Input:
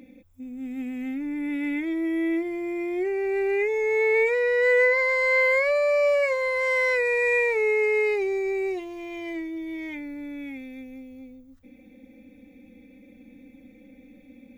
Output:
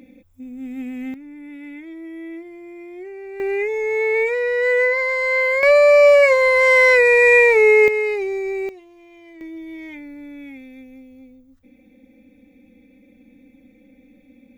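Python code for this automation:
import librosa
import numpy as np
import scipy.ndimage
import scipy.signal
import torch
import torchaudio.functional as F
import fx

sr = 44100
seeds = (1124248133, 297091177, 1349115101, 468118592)

y = fx.gain(x, sr, db=fx.steps((0.0, 2.5), (1.14, -8.5), (3.4, 2.0), (5.63, 10.5), (7.88, 2.0), (8.69, -11.0), (9.41, -1.0)))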